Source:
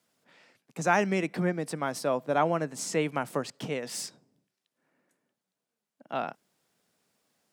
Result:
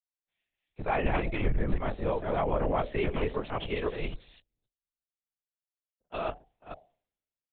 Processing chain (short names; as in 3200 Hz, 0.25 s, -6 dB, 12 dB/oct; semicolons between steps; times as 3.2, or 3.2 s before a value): reverse delay 0.259 s, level -0.5 dB; bell 1500 Hz -6 dB 0.47 oct; de-hum 117.3 Hz, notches 7; LPC vocoder at 8 kHz whisper; limiter -22 dBFS, peak gain reduction 9.5 dB; frequency shift -45 Hz; three-band expander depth 100%; gain +1.5 dB